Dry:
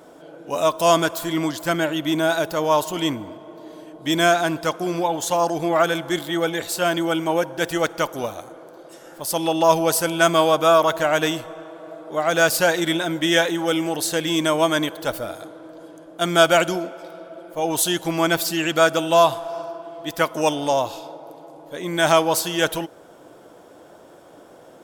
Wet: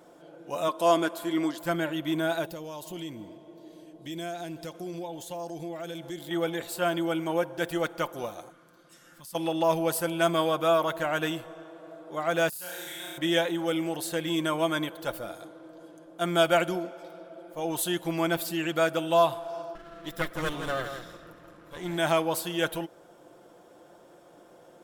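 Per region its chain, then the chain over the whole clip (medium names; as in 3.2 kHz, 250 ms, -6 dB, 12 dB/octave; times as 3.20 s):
0.68–1.58 s: low-pass 12 kHz + resonant low shelf 160 Hz -14 dB, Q 1.5
2.46–6.31 s: peaking EQ 1.2 kHz -11 dB 1.1 oct + compression 3:1, threshold -29 dBFS
8.50–9.35 s: high-order bell 550 Hz -13 dB + compression 2:1, threshold -42 dBFS
12.49–13.18 s: pre-emphasis filter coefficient 0.9 + compression 12:1, threshold -29 dBFS + flutter echo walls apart 5.7 m, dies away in 1.4 s
19.75–21.98 s: comb filter that takes the minimum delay 0.54 ms + delay 167 ms -8 dB
whole clip: dynamic bell 5.9 kHz, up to -8 dB, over -43 dBFS, Q 1.5; comb 5.7 ms, depth 36%; trim -8 dB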